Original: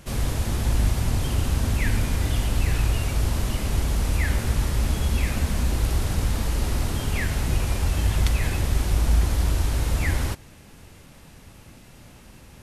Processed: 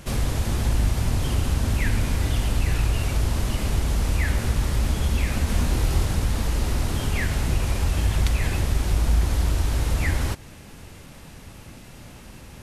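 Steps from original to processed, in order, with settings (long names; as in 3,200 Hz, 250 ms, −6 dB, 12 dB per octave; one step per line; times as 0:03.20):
in parallel at +2.5 dB: downward compressor, threshold −28 dBFS, peak gain reduction 13 dB
0:05.45–0:06.05: on the sum: double-tracking delay 25 ms −3.5 dB
highs frequency-modulated by the lows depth 0.17 ms
level −3 dB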